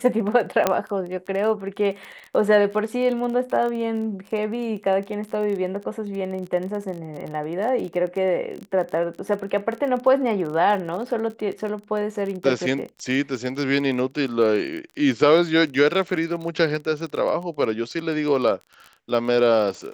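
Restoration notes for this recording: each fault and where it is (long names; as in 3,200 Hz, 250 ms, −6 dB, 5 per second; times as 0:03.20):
surface crackle 26 per second −30 dBFS
0:00.67: click −4 dBFS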